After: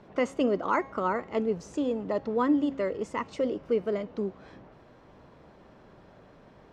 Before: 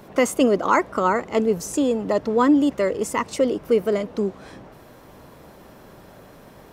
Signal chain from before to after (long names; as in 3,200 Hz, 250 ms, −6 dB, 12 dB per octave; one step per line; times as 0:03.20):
high-frequency loss of the air 140 metres
hum removal 271.4 Hz, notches 30
level −7.5 dB